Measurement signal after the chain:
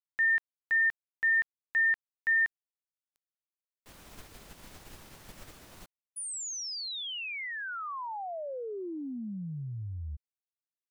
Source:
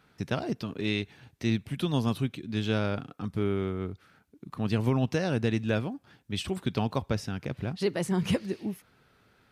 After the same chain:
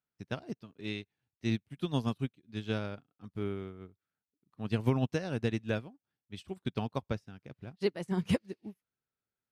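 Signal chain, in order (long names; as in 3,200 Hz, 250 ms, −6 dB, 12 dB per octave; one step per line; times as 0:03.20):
expander for the loud parts 2.5 to 1, over −44 dBFS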